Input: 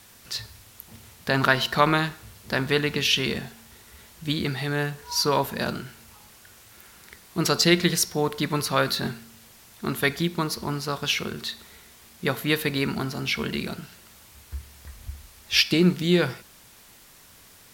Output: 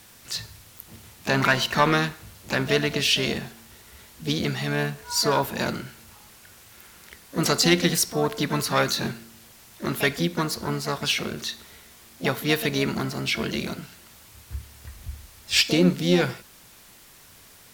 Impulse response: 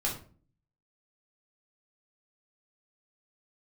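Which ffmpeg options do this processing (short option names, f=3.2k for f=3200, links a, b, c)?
-filter_complex "[0:a]acontrast=63,asplit=2[a][b];[b]asetrate=66075,aresample=44100,atempo=0.66742,volume=-8dB[c];[a][c]amix=inputs=2:normalize=0,volume=-6dB"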